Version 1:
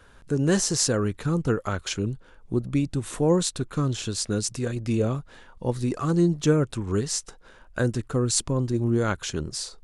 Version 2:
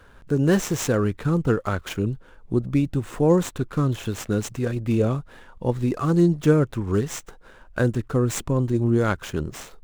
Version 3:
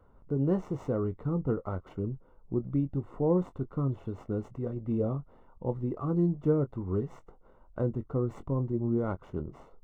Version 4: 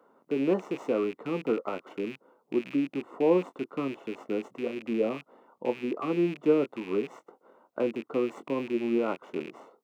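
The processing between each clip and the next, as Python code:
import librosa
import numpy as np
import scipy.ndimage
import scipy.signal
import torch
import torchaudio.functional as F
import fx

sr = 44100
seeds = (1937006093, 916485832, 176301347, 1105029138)

y1 = scipy.ndimage.median_filter(x, 9, mode='constant')
y1 = F.gain(torch.from_numpy(y1), 3.0).numpy()
y2 = scipy.signal.savgol_filter(y1, 65, 4, mode='constant')
y2 = fx.doubler(y2, sr, ms=22.0, db=-11.5)
y2 = F.gain(torch.from_numpy(y2), -8.5).numpy()
y3 = fx.rattle_buzz(y2, sr, strikes_db=-40.0, level_db=-37.0)
y3 = scipy.signal.sosfilt(scipy.signal.butter(4, 250.0, 'highpass', fs=sr, output='sos'), y3)
y3 = F.gain(torch.from_numpy(y3), 4.5).numpy()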